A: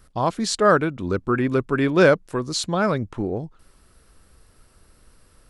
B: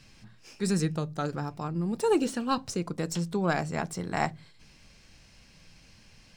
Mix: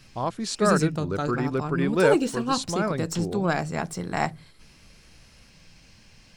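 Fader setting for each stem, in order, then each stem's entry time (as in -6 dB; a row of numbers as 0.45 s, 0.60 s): -6.0 dB, +2.5 dB; 0.00 s, 0.00 s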